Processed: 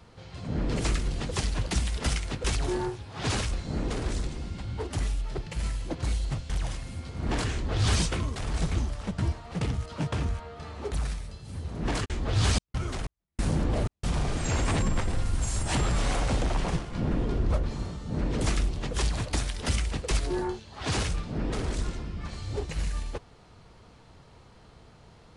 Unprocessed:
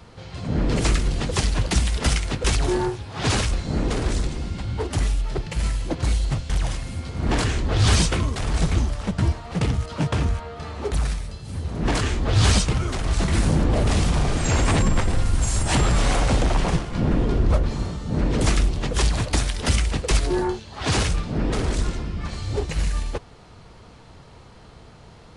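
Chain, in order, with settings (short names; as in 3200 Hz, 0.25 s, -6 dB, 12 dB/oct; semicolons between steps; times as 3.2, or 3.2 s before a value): 12.04–14.19 step gate "x..xxx.x" 93 bpm -60 dB; gain -7 dB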